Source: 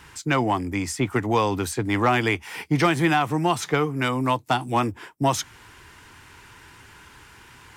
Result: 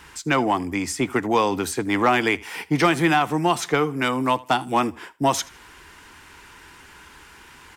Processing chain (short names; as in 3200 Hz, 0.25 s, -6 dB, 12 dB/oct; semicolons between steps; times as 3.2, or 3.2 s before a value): bell 110 Hz -12 dB 0.6 oct; on a send: feedback echo 79 ms, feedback 26%, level -22 dB; on the sum: gain +2 dB